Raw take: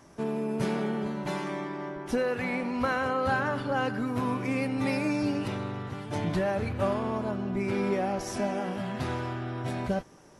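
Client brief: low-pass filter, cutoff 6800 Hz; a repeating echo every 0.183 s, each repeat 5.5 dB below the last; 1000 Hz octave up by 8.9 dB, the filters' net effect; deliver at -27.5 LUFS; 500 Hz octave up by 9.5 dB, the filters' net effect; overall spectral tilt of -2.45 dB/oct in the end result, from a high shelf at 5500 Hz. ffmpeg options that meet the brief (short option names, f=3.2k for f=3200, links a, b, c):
-af "lowpass=6.8k,equalizer=f=500:t=o:g=9,equalizer=f=1k:t=o:g=8,highshelf=f=5.5k:g=7.5,aecho=1:1:183|366|549|732|915|1098|1281:0.531|0.281|0.149|0.079|0.0419|0.0222|0.0118,volume=-5.5dB"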